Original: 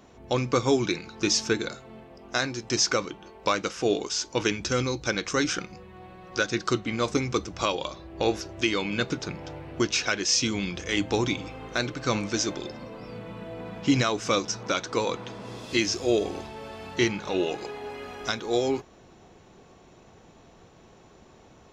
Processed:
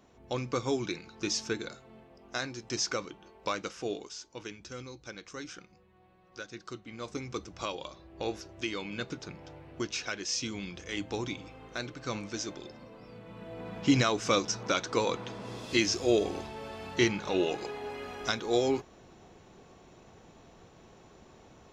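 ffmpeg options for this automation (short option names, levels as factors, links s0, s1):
-af "volume=2.24,afade=t=out:st=3.66:d=0.59:silence=0.354813,afade=t=in:st=6.83:d=0.64:silence=0.421697,afade=t=in:st=13.23:d=0.6:silence=0.421697"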